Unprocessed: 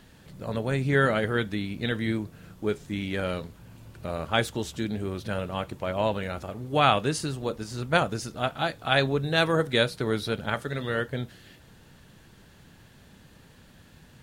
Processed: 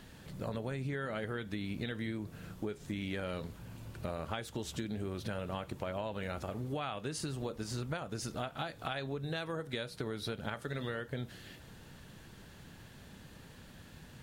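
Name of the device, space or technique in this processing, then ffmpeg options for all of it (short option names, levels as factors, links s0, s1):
serial compression, peaks first: -af "acompressor=threshold=0.0282:ratio=6,acompressor=threshold=0.0178:ratio=3"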